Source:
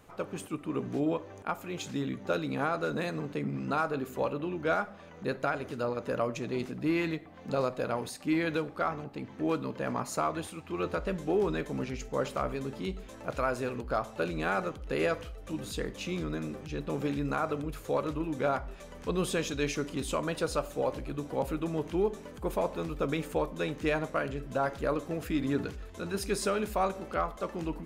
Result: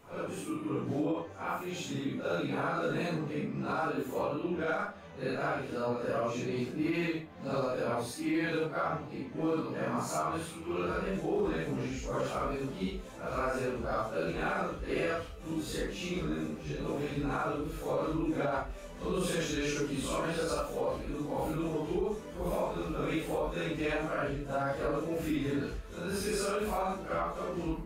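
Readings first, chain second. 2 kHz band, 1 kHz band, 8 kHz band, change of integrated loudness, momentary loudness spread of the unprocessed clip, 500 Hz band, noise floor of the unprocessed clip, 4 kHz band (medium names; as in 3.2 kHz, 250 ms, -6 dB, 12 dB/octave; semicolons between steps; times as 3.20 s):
-1.0 dB, -1.5 dB, -0.5 dB, -1.0 dB, 7 LU, -1.5 dB, -48 dBFS, -0.5 dB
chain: phase randomisation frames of 200 ms; peak limiter -23 dBFS, peak gain reduction 7.5 dB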